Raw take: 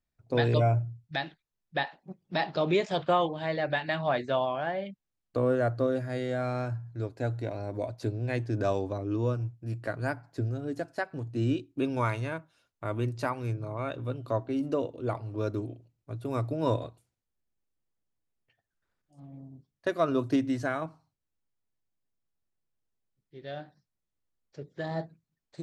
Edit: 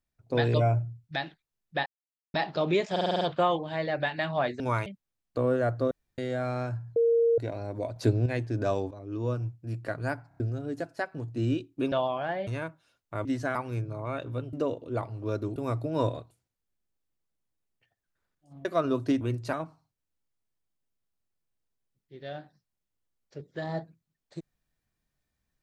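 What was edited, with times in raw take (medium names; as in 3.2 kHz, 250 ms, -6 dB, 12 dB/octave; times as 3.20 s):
1.86–2.34 s: mute
2.91 s: stutter 0.05 s, 7 plays
4.30–4.85 s: swap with 11.91–12.17 s
5.90–6.17 s: room tone
6.95–7.37 s: bleep 464 Hz -19.5 dBFS
7.95–8.25 s: gain +7.5 dB
8.90–9.36 s: fade in, from -14.5 dB
10.27 s: stutter in place 0.03 s, 4 plays
12.95–13.27 s: swap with 20.45–20.75 s
14.25–14.65 s: delete
15.68–16.23 s: delete
19.32–19.89 s: delete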